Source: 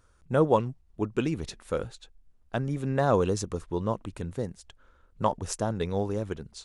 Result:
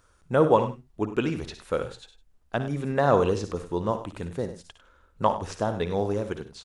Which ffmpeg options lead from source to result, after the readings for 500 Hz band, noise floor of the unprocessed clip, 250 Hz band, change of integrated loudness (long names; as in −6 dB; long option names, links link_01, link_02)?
+3.0 dB, −63 dBFS, +1.5 dB, +2.5 dB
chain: -filter_complex "[0:a]asplit=2[link_01][link_02];[link_02]aecho=0:1:57|70:0.237|0.141[link_03];[link_01][link_03]amix=inputs=2:normalize=0,acrossover=split=4400[link_04][link_05];[link_05]acompressor=threshold=-55dB:ratio=4:attack=1:release=60[link_06];[link_04][link_06]amix=inputs=2:normalize=0,lowshelf=frequency=270:gain=-6,asplit=2[link_07][link_08];[link_08]aecho=0:1:99:0.211[link_09];[link_07][link_09]amix=inputs=2:normalize=0,volume=4dB"